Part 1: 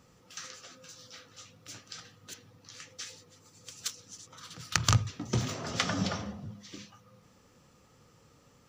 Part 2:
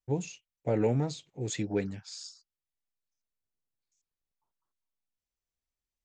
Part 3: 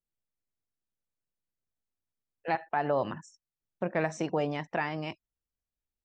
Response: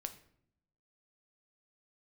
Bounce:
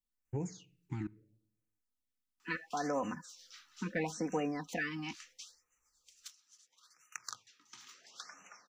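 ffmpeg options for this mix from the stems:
-filter_complex "[0:a]highpass=890,adelay=2400,volume=-5dB,afade=t=out:st=5.28:d=0.3:silence=0.316228[a];[1:a]alimiter=level_in=1dB:limit=-24dB:level=0:latency=1:release=26,volume=-1dB,acrossover=split=380|3200[b][c][d];[b]acompressor=threshold=-39dB:ratio=4[e];[c]acompressor=threshold=-39dB:ratio=4[f];[d]acompressor=threshold=-58dB:ratio=4[g];[e][f][g]amix=inputs=3:normalize=0,adelay=250,volume=1dB,asplit=3[h][i][j];[h]atrim=end=1.07,asetpts=PTS-STARTPTS,afade=t=out:st=1.066:d=0.004:c=hsin[k];[i]atrim=start=1.07:end=3.28,asetpts=PTS-STARTPTS,volume=0[l];[j]atrim=start=3.28,asetpts=PTS-STARTPTS,afade=t=in:d=0.004:c=hsin[m];[k][l][m]concat=n=3:v=0:a=1,asplit=2[n][o];[o]volume=-9.5dB[p];[2:a]aecho=1:1:4:0.89,volume=-4dB[q];[3:a]atrim=start_sample=2205[r];[p][r]afir=irnorm=-1:irlink=0[s];[a][n][q][s]amix=inputs=4:normalize=0,equalizer=f=630:t=o:w=0.97:g=-7.5,afftfilt=real='re*(1-between(b*sr/1024,520*pow(4200/520,0.5+0.5*sin(2*PI*0.74*pts/sr))/1.41,520*pow(4200/520,0.5+0.5*sin(2*PI*0.74*pts/sr))*1.41))':imag='im*(1-between(b*sr/1024,520*pow(4200/520,0.5+0.5*sin(2*PI*0.74*pts/sr))/1.41,520*pow(4200/520,0.5+0.5*sin(2*PI*0.74*pts/sr))*1.41))':win_size=1024:overlap=0.75"

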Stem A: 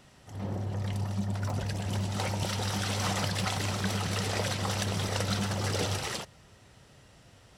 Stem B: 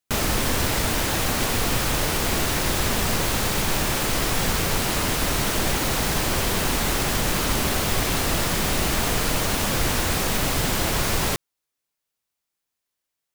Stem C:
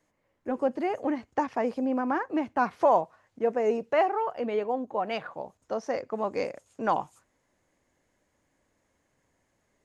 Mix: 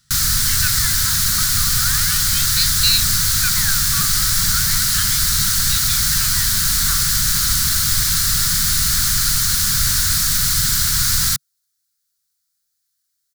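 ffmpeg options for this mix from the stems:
-filter_complex "[0:a]volume=-4dB[a];[1:a]equalizer=f=390:t=o:w=0.81:g=-6,volume=3dB[b];[2:a]aeval=exprs='val(0)*sin(2*PI*1900*n/s+1900*0.8/0.36*sin(2*PI*0.36*n/s))':c=same,volume=3dB[c];[a][b][c]amix=inputs=3:normalize=0,firequalizer=gain_entry='entry(140,0);entry(380,-28);entry(700,-25);entry(1400,2);entry(2600,-9);entry(4200,8)':delay=0.05:min_phase=1"

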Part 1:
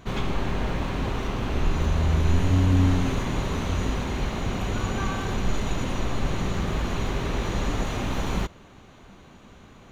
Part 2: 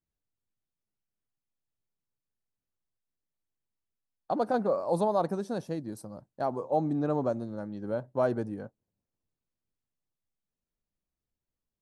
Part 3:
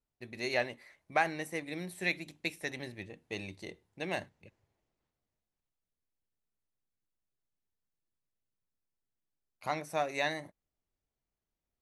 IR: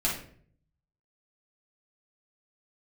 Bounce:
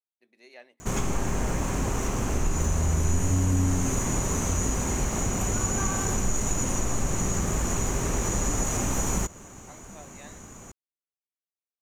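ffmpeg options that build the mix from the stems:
-filter_complex "[0:a]highshelf=f=5.2k:t=q:w=3:g=11,adelay=800,volume=3dB[a];[2:a]highpass=f=230:w=0.5412,highpass=f=230:w=1.3066,volume=-17.5dB[b];[a][b]amix=inputs=2:normalize=0,acompressor=threshold=-25dB:ratio=2"

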